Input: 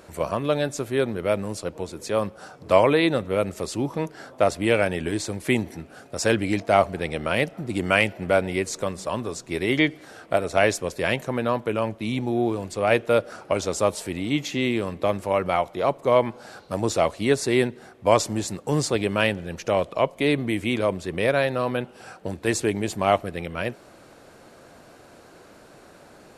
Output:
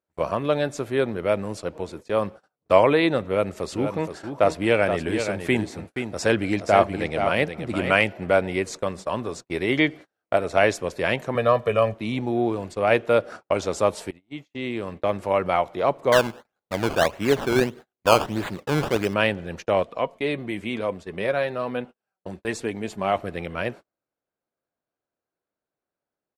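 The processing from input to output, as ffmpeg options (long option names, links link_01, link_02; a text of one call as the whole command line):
ffmpeg -i in.wav -filter_complex "[0:a]asplit=3[link_01][link_02][link_03];[link_01]afade=type=out:start_time=3.71:duration=0.02[link_04];[link_02]aecho=1:1:475:0.422,afade=type=in:start_time=3.71:duration=0.02,afade=type=out:start_time=8:duration=0.02[link_05];[link_03]afade=type=in:start_time=8:duration=0.02[link_06];[link_04][link_05][link_06]amix=inputs=3:normalize=0,asettb=1/sr,asplit=3[link_07][link_08][link_09];[link_07]atrim=end=11.354[link_10];[link_08]atrim=start=11.35:end=11.94,asetpts=PTS-STARTPTS,afade=type=in:duration=0.004:curve=qsin,afade=type=out:start_time=0.586:duration=0.004:curve=qsin,aecho=1:1:1.7:1,atrim=end_sample=26019[link_11];[link_09]atrim=start=11.936[link_12];[link_10][link_11]acrossfade=duration=0.004:curve1=hsin:curve2=qsin[link_13];[link_13][link_12]acrossfade=duration=0.004:curve1=qsin:curve2=hsin,asettb=1/sr,asplit=3[link_14][link_15][link_16];[link_14]atrim=end=16.124[link_17];[link_15]atrim=start=16.12:end=19.14,asetpts=PTS-STARTPTS,afade=type=in:duration=0.004:curve=qsin,afade=type=out:start_time=3.016:duration=0.004:curve=qsin,acrusher=samples=16:mix=1:aa=0.000001:lfo=1:lforange=16:lforate=1.6[link_18];[link_16]atrim=start=19.136[link_19];[link_17][link_18]acrossfade=duration=0.004:curve1=hsin:curve2=qsin[link_20];[link_20][link_19]acrossfade=duration=0.004:curve1=qsin:curve2=hsin,asplit=3[link_21][link_22][link_23];[link_21]afade=type=out:start_time=19.82:duration=0.02[link_24];[link_22]flanger=delay=3.9:depth=1.8:regen=56:speed=1.1:shape=triangular,afade=type=in:start_time=19.82:duration=0.02,afade=type=out:start_time=23.15:duration=0.02[link_25];[link_23]afade=type=in:start_time=23.15:duration=0.02[link_26];[link_24][link_25][link_26]amix=inputs=3:normalize=0,asplit=2[link_27][link_28];[link_27]atrim=end=14.11,asetpts=PTS-STARTPTS,afade=type=out:start_time=14.106:duration=0.004:curve=hsin:silence=0.0749894[link_29];[link_28]atrim=start=14.11,asetpts=PTS-STARTPTS,afade=type=in:duration=1.17:silence=0.0749894[link_30];[link_29][link_30]concat=n=2:v=0:a=1,highshelf=frequency=5100:gain=-10.5,agate=range=-41dB:threshold=-37dB:ratio=16:detection=peak,lowshelf=frequency=360:gain=-3.5,volume=2dB" out.wav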